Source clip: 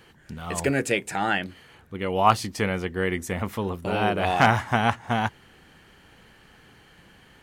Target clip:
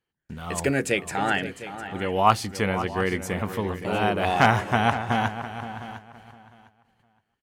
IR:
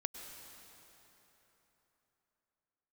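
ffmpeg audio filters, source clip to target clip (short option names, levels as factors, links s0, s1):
-filter_complex "[0:a]asplit=2[s0][s1];[s1]adelay=516,lowpass=f=2300:p=1,volume=0.266,asplit=2[s2][s3];[s3]adelay=516,lowpass=f=2300:p=1,volume=0.17[s4];[s2][s4]amix=inputs=2:normalize=0[s5];[s0][s5]amix=inputs=2:normalize=0,agate=range=0.0282:threshold=0.00398:ratio=16:detection=peak,asplit=2[s6][s7];[s7]aecho=0:1:705|1410:0.188|0.0339[s8];[s6][s8]amix=inputs=2:normalize=0"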